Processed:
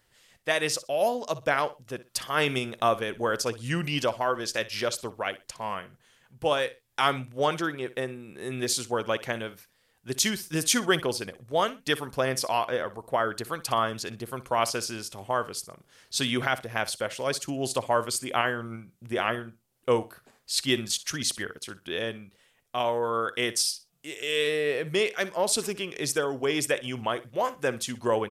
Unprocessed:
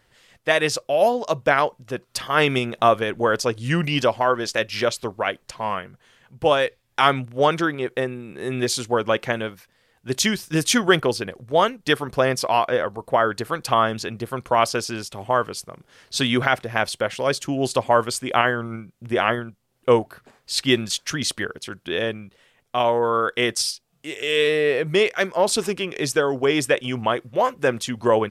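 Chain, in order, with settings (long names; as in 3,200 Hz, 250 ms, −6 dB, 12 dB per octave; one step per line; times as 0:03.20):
high-shelf EQ 5,500 Hz +9.5 dB
repeating echo 61 ms, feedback 22%, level −17 dB
level −7.5 dB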